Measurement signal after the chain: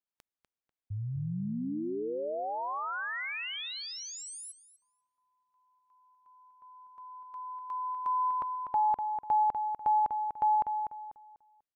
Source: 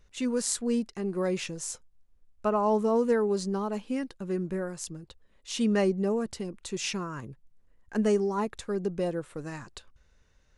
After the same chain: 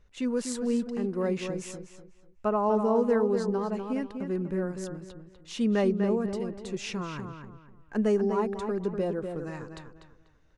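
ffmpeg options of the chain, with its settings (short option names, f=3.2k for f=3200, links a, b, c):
-filter_complex "[0:a]highshelf=f=3.9k:g=-10.5,asplit=2[a][b];[b]adelay=246,lowpass=f=3.2k:p=1,volume=-6.5dB,asplit=2[c][d];[d]adelay=246,lowpass=f=3.2k:p=1,volume=0.31,asplit=2[e][f];[f]adelay=246,lowpass=f=3.2k:p=1,volume=0.31,asplit=2[g][h];[h]adelay=246,lowpass=f=3.2k:p=1,volume=0.31[i];[a][c][e][g][i]amix=inputs=5:normalize=0"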